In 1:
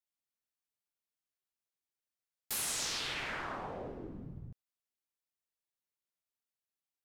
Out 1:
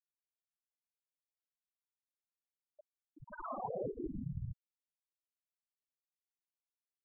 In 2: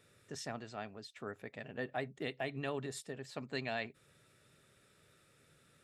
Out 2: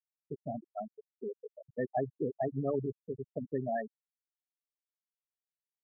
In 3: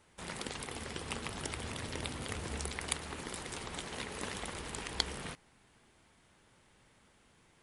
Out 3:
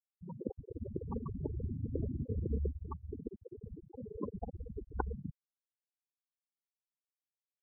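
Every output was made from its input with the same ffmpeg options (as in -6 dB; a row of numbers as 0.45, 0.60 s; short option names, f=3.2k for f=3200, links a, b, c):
-af "lowpass=1.4k,afftfilt=real='re*gte(hypot(re,im),0.0355)':imag='im*gte(hypot(re,im),0.0355)':win_size=1024:overlap=0.75,volume=8dB"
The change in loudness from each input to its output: -5.5, +4.5, -2.0 LU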